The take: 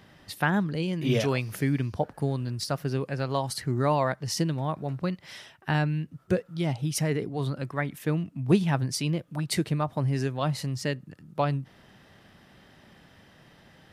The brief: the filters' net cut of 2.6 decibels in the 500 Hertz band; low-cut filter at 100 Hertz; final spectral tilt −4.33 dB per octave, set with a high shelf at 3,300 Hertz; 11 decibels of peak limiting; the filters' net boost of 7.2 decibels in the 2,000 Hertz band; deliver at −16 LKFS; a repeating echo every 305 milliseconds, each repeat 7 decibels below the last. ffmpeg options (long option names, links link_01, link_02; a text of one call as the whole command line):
ffmpeg -i in.wav -af "highpass=100,equalizer=frequency=500:width_type=o:gain=-4,equalizer=frequency=2000:width_type=o:gain=7,highshelf=frequency=3300:gain=8,alimiter=limit=-15.5dB:level=0:latency=1,aecho=1:1:305|610|915|1220|1525:0.447|0.201|0.0905|0.0407|0.0183,volume=12.5dB" out.wav